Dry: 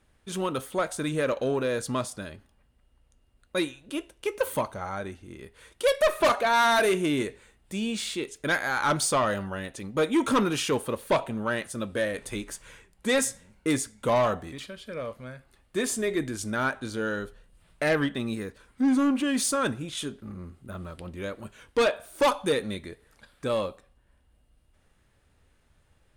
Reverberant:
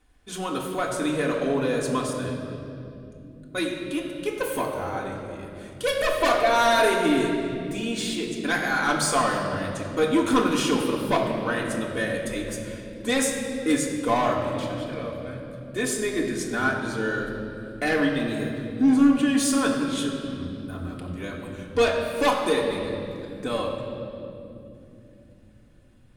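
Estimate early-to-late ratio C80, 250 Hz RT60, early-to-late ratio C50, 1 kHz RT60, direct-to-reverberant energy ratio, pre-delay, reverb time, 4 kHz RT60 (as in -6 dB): 5.0 dB, 5.7 s, 4.0 dB, 2.2 s, -3.0 dB, 3 ms, 2.9 s, 2.0 s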